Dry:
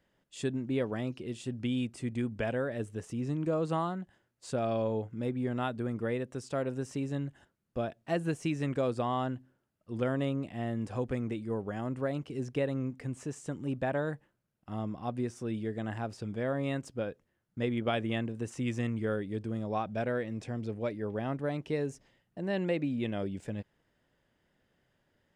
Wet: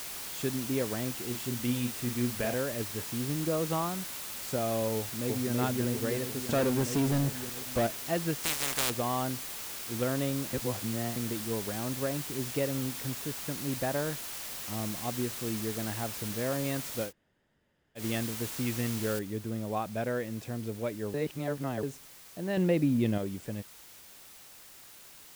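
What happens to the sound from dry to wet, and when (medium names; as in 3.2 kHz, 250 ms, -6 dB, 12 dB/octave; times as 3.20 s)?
1.25–2.54 s: doubling 41 ms -6 dB
4.96–5.51 s: echo throw 330 ms, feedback 65%, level -1.5 dB
6.49–7.87 s: waveshaping leveller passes 3
8.42–8.89 s: spectral contrast reduction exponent 0.14
10.53–11.16 s: reverse
13.11–14.77 s: distance through air 61 m
17.08–18.00 s: room tone, crossfade 0.10 s
19.19 s: noise floor step -40 dB -52 dB
21.14–21.83 s: reverse
22.57–23.18 s: bass shelf 400 Hz +8.5 dB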